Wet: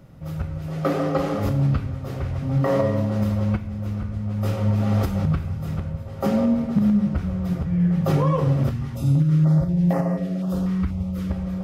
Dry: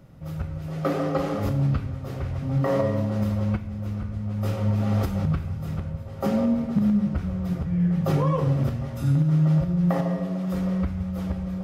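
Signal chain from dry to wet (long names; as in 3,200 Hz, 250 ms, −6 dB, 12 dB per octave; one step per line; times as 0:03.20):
0:08.71–0:11.31: notch on a step sequencer 4.1 Hz 590–3,500 Hz
level +2.5 dB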